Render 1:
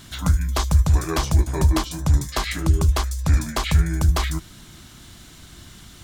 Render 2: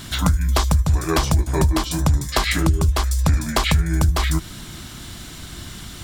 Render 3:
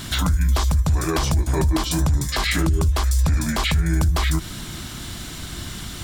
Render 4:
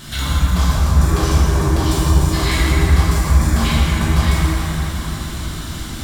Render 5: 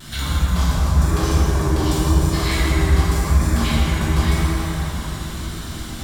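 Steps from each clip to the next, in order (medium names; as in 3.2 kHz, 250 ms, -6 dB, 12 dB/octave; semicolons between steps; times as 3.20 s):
band-stop 6.4 kHz, Q 17; compression 5:1, threshold -23 dBFS, peak gain reduction 11.5 dB; trim +8.5 dB
in parallel at -8 dB: saturation -11.5 dBFS, distortion -18 dB; on the sum: peak limiter -12 dBFS, peak gain reduction 10 dB
plate-style reverb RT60 4.7 s, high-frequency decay 0.5×, DRR -9.5 dB; trim -5.5 dB
feedback echo behind a band-pass 100 ms, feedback 68%, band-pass 430 Hz, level -6 dB; vibrato 0.93 Hz 28 cents; trim -3 dB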